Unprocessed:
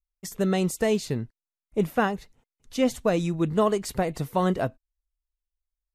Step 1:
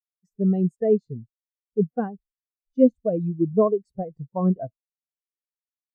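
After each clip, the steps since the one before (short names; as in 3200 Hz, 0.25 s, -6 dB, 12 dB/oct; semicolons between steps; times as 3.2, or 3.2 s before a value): spectral expander 2.5:1; gain +6 dB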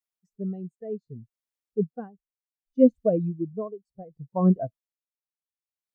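dB-linear tremolo 0.66 Hz, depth 18 dB; gain +2 dB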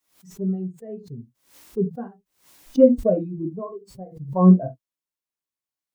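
small resonant body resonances 290/1000 Hz, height 6 dB; on a send at -2 dB: reverb, pre-delay 3 ms; on the sum: backwards sustainer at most 130 dB/s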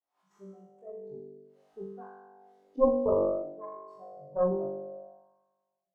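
flutter echo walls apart 3.5 m, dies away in 1.4 s; wah 0.59 Hz 400–1100 Hz, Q 3.2; added harmonics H 2 -6 dB, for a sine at -4.5 dBFS; gain -5.5 dB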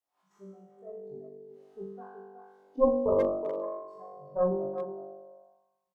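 speakerphone echo 0.37 s, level -8 dB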